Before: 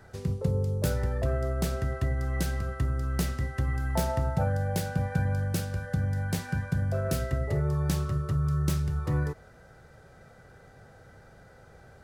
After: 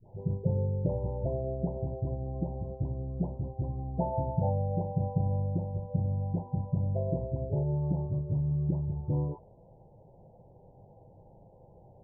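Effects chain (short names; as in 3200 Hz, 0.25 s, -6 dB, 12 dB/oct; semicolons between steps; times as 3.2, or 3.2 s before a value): spectral delay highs late, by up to 0.462 s; Chebyshev low-pass 980 Hz, order 8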